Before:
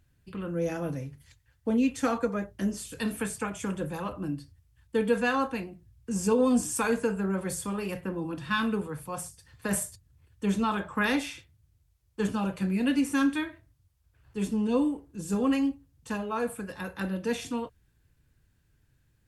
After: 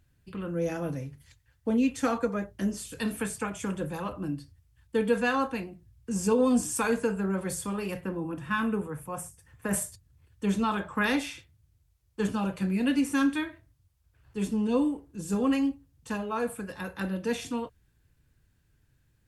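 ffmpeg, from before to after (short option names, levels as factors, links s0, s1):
-filter_complex "[0:a]asettb=1/sr,asplit=3[s0][s1][s2];[s0]atrim=end=8.174[s3];[s1]atrim=start=8.17:end=9.74,asetpts=PTS-STARTPTS,afade=t=in:d=0.004:c=qsin,afade=t=out:st=1.566:d=0.004:c=qsin,equalizer=f=4300:t=o:w=0.71:g=-15[s4];[s2]atrim=start=9.736[s5];[s3][s4]acrossfade=d=0.004:c1=hsin:c2=qsin[s6];[s6][s5]acrossfade=d=0.004:c1=qsin:c2=hsin"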